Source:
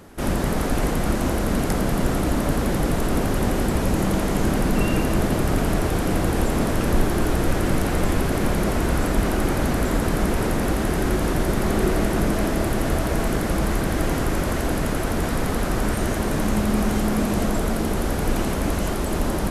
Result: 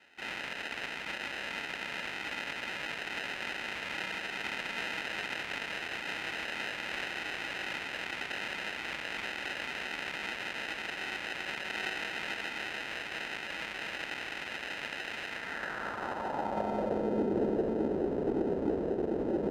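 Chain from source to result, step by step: sample-and-hold 39×; band-pass sweep 2.3 kHz -> 400 Hz, 15.27–17.24 s

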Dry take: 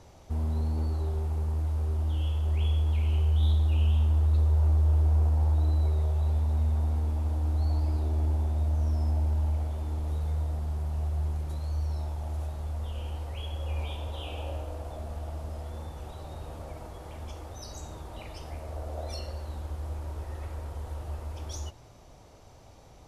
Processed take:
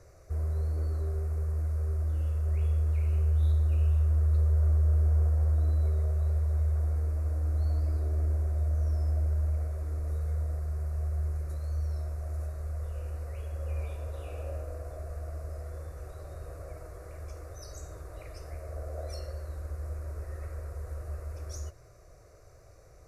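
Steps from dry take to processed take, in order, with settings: static phaser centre 870 Hz, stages 6

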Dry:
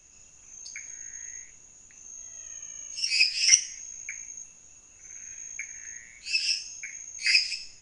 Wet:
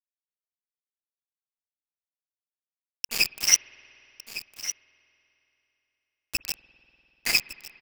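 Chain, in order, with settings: small samples zeroed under -19.5 dBFS; delay 1157 ms -13 dB; spring tank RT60 3.6 s, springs 49 ms, chirp 55 ms, DRR 18 dB

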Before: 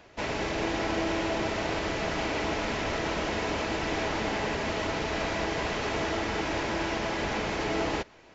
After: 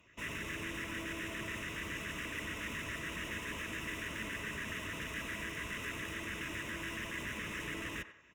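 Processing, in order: high-pass 44 Hz; bass shelf 480 Hz -9 dB; comb 1.1 ms, depth 45%; in parallel at -1 dB: peak limiter -28.5 dBFS, peak gain reduction 9.5 dB; on the sum: hard clipper -29.5 dBFS, distortion -9 dB; LFO notch square 7.1 Hz 790–1700 Hz; Chebyshev shaper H 7 -25 dB, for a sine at -23.5 dBFS; static phaser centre 1.9 kHz, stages 4; on a send: band-passed feedback delay 94 ms, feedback 45%, band-pass 970 Hz, level -9.5 dB; on the sum: trim -3.5 dB

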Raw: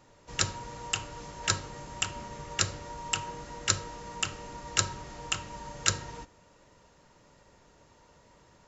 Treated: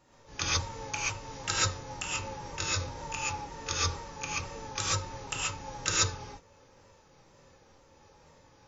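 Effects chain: sawtooth pitch modulation -2.5 st, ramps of 479 ms; gated-style reverb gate 160 ms rising, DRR -7 dB; trim -6 dB

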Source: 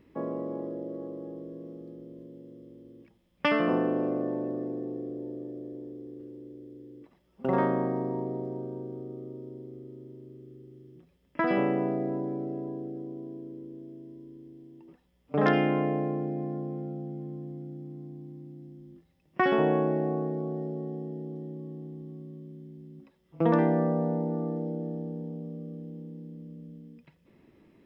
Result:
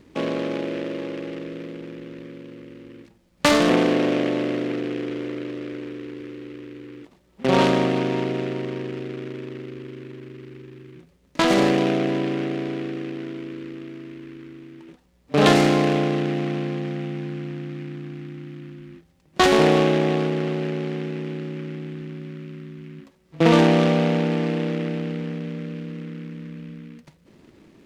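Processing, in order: delay time shaken by noise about 1.9 kHz, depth 0.082 ms; trim +8 dB

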